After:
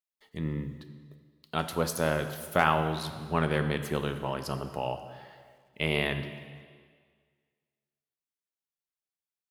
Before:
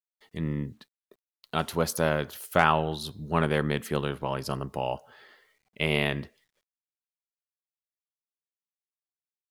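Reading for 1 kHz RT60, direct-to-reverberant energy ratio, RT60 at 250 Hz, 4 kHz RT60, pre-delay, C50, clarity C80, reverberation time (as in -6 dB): 1.8 s, 8.5 dB, 1.8 s, 1.7 s, 8 ms, 10.0 dB, 11.0 dB, 1.8 s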